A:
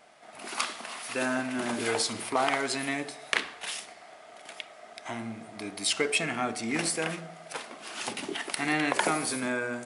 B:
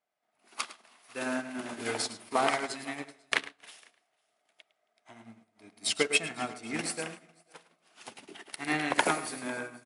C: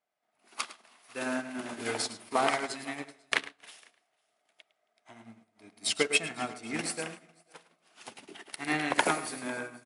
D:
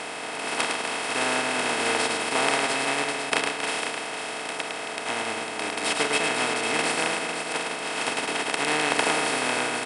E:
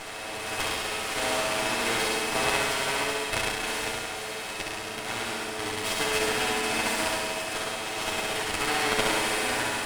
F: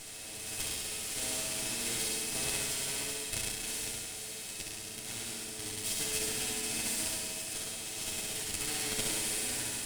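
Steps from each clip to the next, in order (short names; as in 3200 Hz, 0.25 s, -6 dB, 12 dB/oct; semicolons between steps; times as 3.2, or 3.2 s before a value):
tapped delay 0.106/0.271/0.5/0.61 s -7.5/-16.5/-14/-19.5 dB; upward expander 2.5:1, over -44 dBFS; gain +2 dB
nothing audible
per-bin compression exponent 0.2; gain -4 dB
minimum comb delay 9.3 ms; flutter echo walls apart 11.5 m, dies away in 1.2 s; gain -3.5 dB
EQ curve 170 Hz 0 dB, 1100 Hz -15 dB, 8100 Hz +7 dB; gain -5.5 dB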